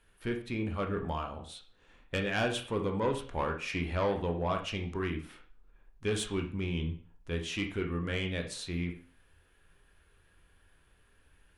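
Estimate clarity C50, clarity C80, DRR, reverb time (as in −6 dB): 9.0 dB, 13.5 dB, 3.0 dB, 0.45 s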